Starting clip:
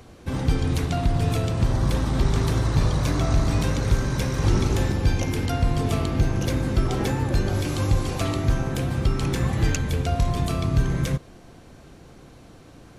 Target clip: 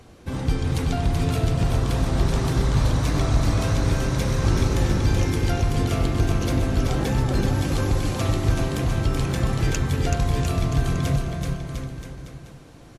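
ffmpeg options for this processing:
-af "aecho=1:1:380|703|977.6|1211|1409:0.631|0.398|0.251|0.158|0.1,volume=-1dB" -ar 32000 -c:a libmp3lame -b:a 56k

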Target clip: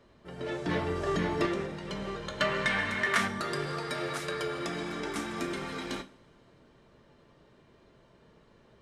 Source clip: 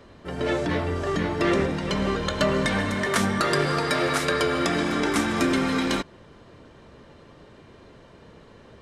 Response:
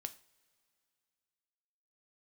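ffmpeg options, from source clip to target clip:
-filter_complex "[0:a]asplit=3[a][b][c];[a]afade=t=out:st=0.65:d=0.02[d];[b]acontrast=80,afade=t=in:st=0.65:d=0.02,afade=t=out:st=1.45:d=0.02[e];[c]afade=t=in:st=1.45:d=0.02[f];[d][e][f]amix=inputs=3:normalize=0,asettb=1/sr,asplit=3[g][h][i];[g]atrim=end=2.404[j];[h]atrim=start=2.4:end=3.28,asetpts=PTS-STARTPTS,afade=t=in:d=0.004:c=qsin,afade=t=out:st=0.876:d=0.004:c=qsin,equalizer=f=2k:w=0.62:g=11.5[k];[i]atrim=start=3.276[l];[j][k]acrossfade=d=0.004:c1=hsin:c2=qsin[m];[m][l]acrossfade=d=0.004:c1=qsin:c2=hsin[n];[1:a]atrim=start_sample=2205[o];[n][o]afir=irnorm=-1:irlink=0,volume=-8dB"

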